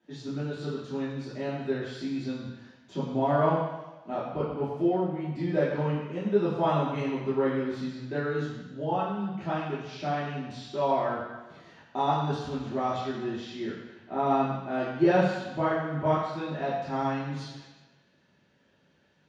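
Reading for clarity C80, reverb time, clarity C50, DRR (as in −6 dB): 3.5 dB, 1.2 s, 1.5 dB, −10.0 dB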